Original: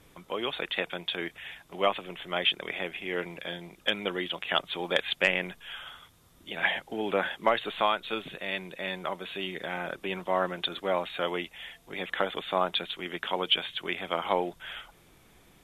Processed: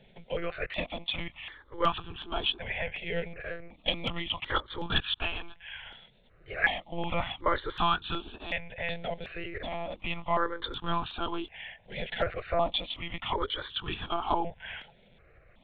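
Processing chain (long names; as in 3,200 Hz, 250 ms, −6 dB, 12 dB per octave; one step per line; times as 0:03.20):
one-pitch LPC vocoder at 8 kHz 170 Hz
0:05.07–0:05.86: parametric band 290 Hz −11 dB 2 octaves
step-sequenced phaser 2.7 Hz 310–2,100 Hz
level +2.5 dB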